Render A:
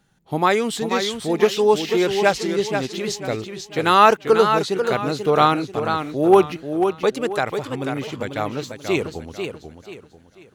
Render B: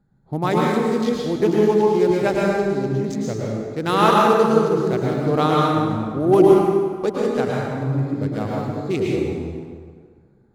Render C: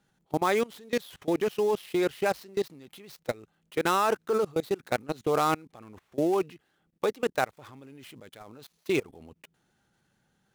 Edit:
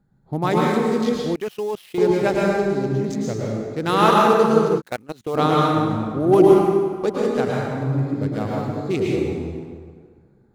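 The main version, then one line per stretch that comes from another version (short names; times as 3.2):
B
1.35–1.98 from C
4.79–5.36 from C, crossfade 0.06 s
not used: A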